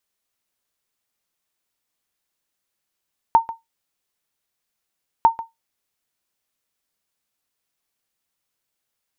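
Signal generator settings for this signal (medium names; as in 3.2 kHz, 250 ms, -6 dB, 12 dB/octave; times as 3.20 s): sonar ping 911 Hz, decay 0.17 s, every 1.90 s, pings 2, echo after 0.14 s, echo -16.5 dB -4.5 dBFS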